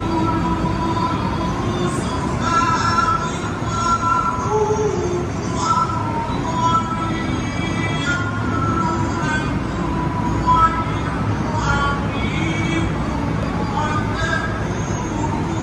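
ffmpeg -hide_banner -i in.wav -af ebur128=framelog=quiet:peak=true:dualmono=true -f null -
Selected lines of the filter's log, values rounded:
Integrated loudness:
  I:         -16.8 LUFS
  Threshold: -26.8 LUFS
Loudness range:
  LRA:         2.1 LU
  Threshold: -36.6 LUFS
  LRA low:   -17.6 LUFS
  LRA high:  -15.6 LUFS
True peak:
  Peak:       -3.7 dBFS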